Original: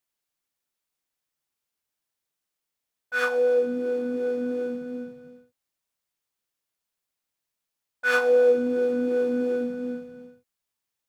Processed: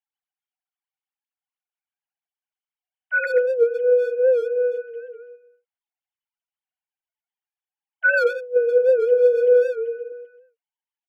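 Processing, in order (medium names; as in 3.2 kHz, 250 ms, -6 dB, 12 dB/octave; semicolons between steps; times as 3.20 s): formants replaced by sine waves; 8.05–10.12 s: bass shelf 460 Hz +7.5 dB; compressor with a negative ratio -22 dBFS, ratio -0.5; distance through air 64 m; small resonant body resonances 340/3000 Hz, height 10 dB, ringing for 35 ms; speakerphone echo 130 ms, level -8 dB; warped record 78 rpm, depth 100 cents; trim +4.5 dB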